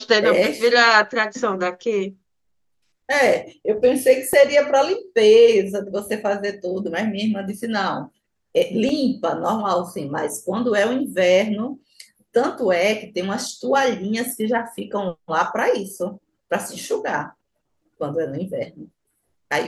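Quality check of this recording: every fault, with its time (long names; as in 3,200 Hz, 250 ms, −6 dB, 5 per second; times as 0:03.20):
0:04.33: drop-out 2.2 ms
0:08.89: drop-out 2.7 ms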